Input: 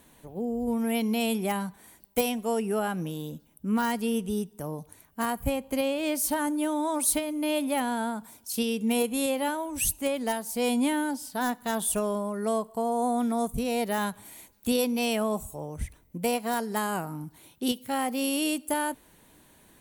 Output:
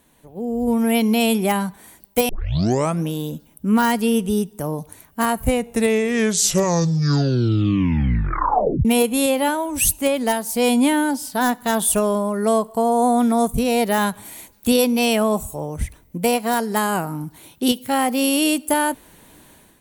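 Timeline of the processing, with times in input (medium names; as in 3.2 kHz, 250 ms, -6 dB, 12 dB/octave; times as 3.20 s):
2.29 s: tape start 0.74 s
5.24 s: tape stop 3.61 s
whole clip: level rider gain up to 11.5 dB; trim -1.5 dB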